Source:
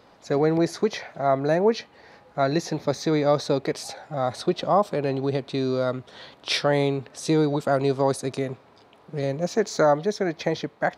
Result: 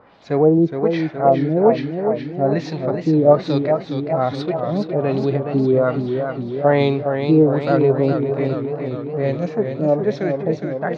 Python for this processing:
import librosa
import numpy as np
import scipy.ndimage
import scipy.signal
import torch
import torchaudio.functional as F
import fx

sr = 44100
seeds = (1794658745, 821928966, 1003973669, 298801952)

y = fx.hpss(x, sr, part='harmonic', gain_db=9)
y = fx.filter_lfo_lowpass(y, sr, shape='sine', hz=1.2, low_hz=280.0, high_hz=4000.0, q=1.5)
y = fx.echo_warbled(y, sr, ms=416, feedback_pct=65, rate_hz=2.8, cents=107, wet_db=-6.5)
y = y * 10.0 ** (-3.0 / 20.0)